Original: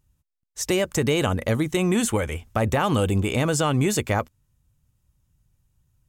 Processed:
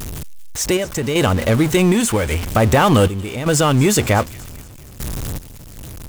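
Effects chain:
converter with a step at zero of −26 dBFS
sample-and-hold tremolo 2.6 Hz, depth 80%
on a send: delay with a high-pass on its return 237 ms, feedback 46%, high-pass 2,400 Hz, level −18 dB
on the sum: level +7.5 dB

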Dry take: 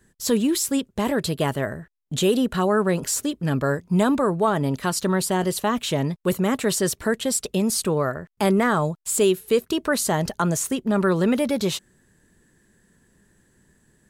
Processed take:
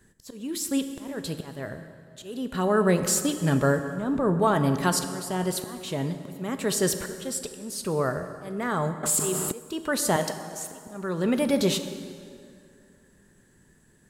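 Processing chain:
0:03.89–0:04.40: spectral tilt −2.5 dB per octave
0:10.16–0:10.72: high-pass filter 420 Hz 12 dB per octave
volume swells 688 ms
dense smooth reverb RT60 2.4 s, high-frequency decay 0.7×, DRR 8 dB
0:09.03–0:09.52: envelope flattener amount 70%

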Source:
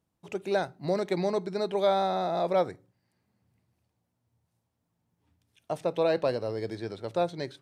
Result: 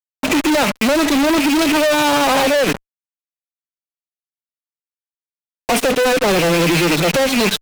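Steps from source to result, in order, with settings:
loose part that buzzes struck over −45 dBFS, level −30 dBFS
amplitude tremolo 13 Hz, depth 70%
phase-vocoder pitch shift with formants kept +7.5 semitones
downward compressor 3 to 1, threshold −36 dBFS, peak gain reduction 10 dB
fuzz pedal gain 63 dB, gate −56 dBFS

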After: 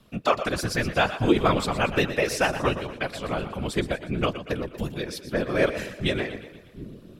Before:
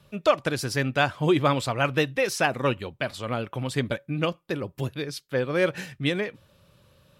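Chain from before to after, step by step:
echo with a time of its own for lows and highs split 300 Hz, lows 744 ms, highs 119 ms, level −11.5 dB
random phases in short frames

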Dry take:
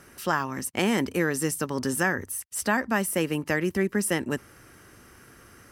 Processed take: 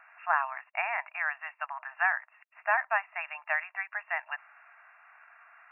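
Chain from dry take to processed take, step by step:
linear-phase brick-wall band-pass 620–2,800 Hz

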